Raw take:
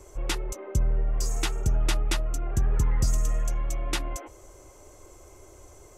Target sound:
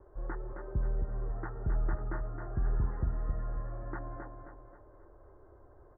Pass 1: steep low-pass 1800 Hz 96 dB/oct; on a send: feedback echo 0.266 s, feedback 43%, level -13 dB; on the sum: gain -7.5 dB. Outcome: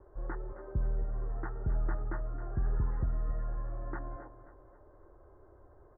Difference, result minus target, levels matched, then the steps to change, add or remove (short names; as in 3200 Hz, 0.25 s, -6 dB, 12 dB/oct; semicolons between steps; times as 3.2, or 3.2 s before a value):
echo-to-direct -7 dB
change: feedback echo 0.266 s, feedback 43%, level -6 dB